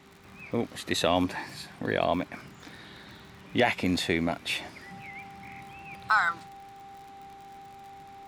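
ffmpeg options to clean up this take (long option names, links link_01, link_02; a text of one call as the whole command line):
ffmpeg -i in.wav -af "adeclick=threshold=4,bandreject=frequency=393.5:width_type=h:width=4,bandreject=frequency=787:width_type=h:width=4,bandreject=frequency=1180.5:width_type=h:width=4,bandreject=frequency=790:width=30" out.wav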